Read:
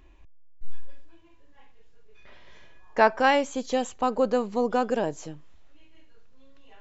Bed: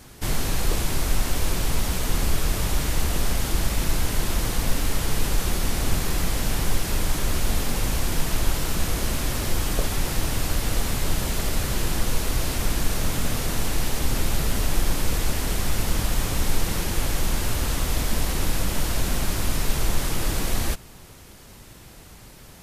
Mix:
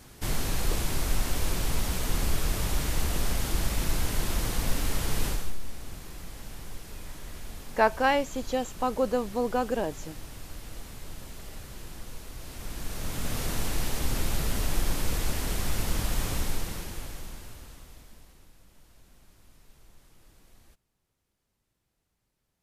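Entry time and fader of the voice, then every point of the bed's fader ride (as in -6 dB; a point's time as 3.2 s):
4.80 s, -3.0 dB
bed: 5.29 s -4.5 dB
5.56 s -18 dB
12.36 s -18 dB
13.41 s -5 dB
16.33 s -5 dB
18.54 s -33.5 dB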